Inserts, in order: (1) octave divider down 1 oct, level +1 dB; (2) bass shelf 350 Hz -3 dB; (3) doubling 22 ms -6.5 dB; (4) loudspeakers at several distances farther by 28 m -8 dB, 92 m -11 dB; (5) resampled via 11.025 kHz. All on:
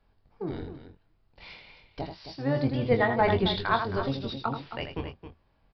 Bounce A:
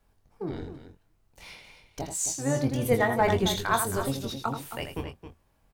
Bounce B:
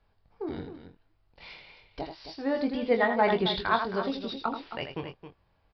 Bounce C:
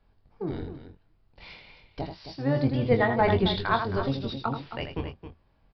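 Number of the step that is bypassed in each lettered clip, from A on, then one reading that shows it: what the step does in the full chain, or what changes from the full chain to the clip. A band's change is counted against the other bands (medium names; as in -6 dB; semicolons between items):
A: 5, momentary loudness spread change -2 LU; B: 1, 125 Hz band -10.5 dB; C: 2, 125 Hz band +2.0 dB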